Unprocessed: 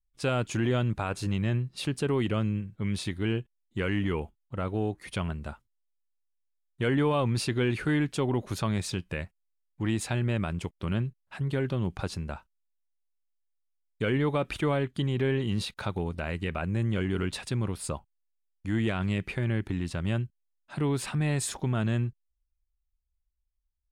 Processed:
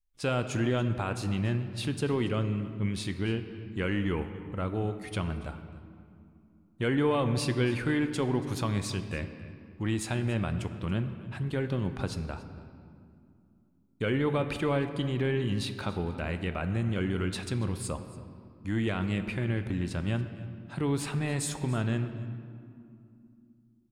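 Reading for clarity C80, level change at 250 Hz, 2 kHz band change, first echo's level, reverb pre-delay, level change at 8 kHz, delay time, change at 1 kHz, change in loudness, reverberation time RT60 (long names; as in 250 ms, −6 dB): 10.5 dB, −0.5 dB, −1.0 dB, −19.5 dB, 4 ms, −1.0 dB, 282 ms, −1.0 dB, −1.0 dB, 2.6 s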